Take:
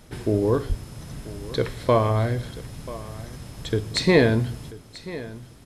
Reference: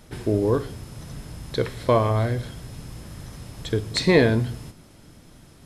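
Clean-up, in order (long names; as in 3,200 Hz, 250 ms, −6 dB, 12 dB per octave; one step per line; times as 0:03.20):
0:00.68–0:00.80: high-pass filter 140 Hz 24 dB per octave
echo removal 987 ms −17 dB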